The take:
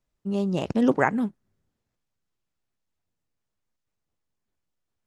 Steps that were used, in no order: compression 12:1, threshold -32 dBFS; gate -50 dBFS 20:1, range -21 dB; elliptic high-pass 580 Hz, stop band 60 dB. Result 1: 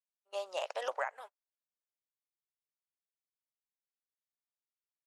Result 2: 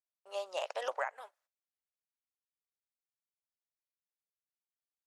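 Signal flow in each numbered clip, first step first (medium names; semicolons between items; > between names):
elliptic high-pass > compression > gate; gate > elliptic high-pass > compression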